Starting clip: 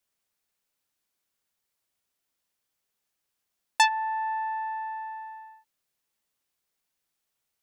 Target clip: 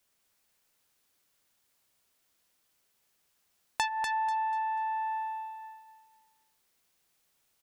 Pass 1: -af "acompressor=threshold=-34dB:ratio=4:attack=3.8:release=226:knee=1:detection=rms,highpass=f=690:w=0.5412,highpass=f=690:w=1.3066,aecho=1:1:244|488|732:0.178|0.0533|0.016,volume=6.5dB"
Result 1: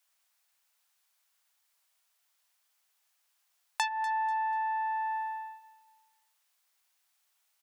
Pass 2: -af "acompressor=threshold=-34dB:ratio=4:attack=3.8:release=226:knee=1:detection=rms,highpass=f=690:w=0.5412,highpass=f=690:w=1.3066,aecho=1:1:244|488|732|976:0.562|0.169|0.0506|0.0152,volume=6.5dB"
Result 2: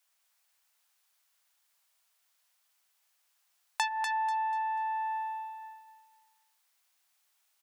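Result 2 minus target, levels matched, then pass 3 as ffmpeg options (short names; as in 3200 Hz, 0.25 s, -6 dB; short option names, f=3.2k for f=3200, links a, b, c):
500 Hz band -5.0 dB
-af "acompressor=threshold=-34dB:ratio=4:attack=3.8:release=226:knee=1:detection=rms,aecho=1:1:244|488|732|976:0.562|0.169|0.0506|0.0152,volume=6.5dB"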